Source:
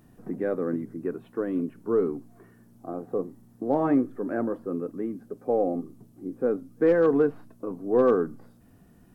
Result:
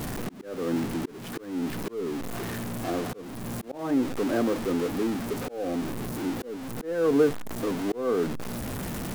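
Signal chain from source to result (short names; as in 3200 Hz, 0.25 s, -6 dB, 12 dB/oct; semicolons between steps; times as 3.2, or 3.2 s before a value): zero-crossing step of -27.5 dBFS; auto swell 0.375 s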